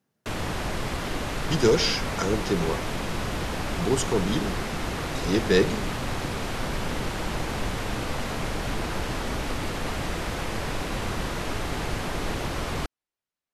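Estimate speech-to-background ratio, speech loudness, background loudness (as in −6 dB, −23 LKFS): 4.5 dB, −26.0 LKFS, −30.5 LKFS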